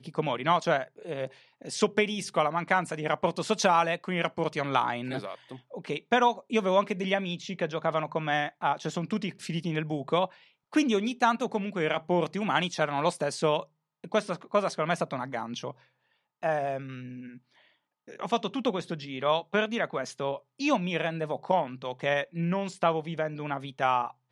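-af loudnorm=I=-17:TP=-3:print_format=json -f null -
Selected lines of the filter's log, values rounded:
"input_i" : "-29.1",
"input_tp" : "-8.1",
"input_lra" : "3.8",
"input_thresh" : "-39.5",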